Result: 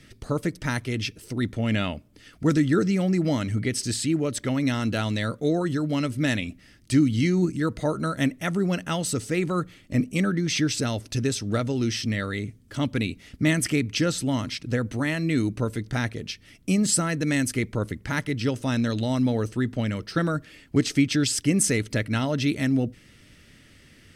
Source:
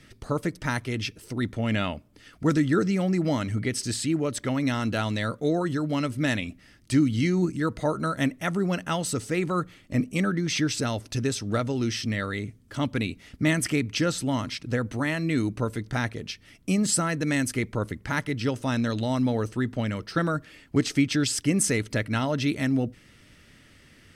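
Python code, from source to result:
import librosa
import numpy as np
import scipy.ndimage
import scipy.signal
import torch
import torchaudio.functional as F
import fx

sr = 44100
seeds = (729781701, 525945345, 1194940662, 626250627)

y = fx.peak_eq(x, sr, hz=1000.0, db=-4.5, octaves=1.4)
y = y * librosa.db_to_amplitude(2.0)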